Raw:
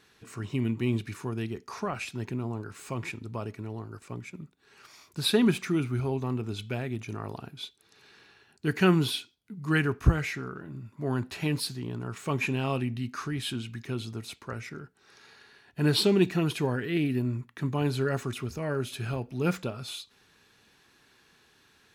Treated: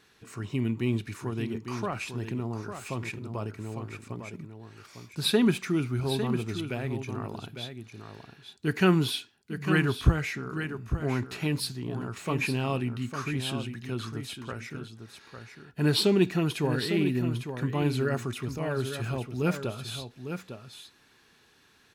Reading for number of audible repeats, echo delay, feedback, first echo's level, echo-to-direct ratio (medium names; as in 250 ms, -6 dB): 1, 853 ms, no regular repeats, -8.5 dB, -8.5 dB